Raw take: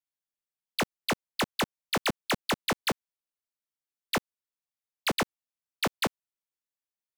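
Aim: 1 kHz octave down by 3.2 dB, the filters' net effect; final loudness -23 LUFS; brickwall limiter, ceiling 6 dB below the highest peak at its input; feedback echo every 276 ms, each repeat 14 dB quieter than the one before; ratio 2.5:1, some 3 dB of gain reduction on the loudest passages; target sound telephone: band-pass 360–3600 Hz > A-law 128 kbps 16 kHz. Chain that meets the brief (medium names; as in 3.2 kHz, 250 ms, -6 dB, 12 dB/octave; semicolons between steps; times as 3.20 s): peaking EQ 1 kHz -4 dB; compression 2.5:1, threshold -30 dBFS; peak limiter -30 dBFS; band-pass 360–3600 Hz; feedback delay 276 ms, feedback 20%, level -14 dB; trim +18 dB; A-law 128 kbps 16 kHz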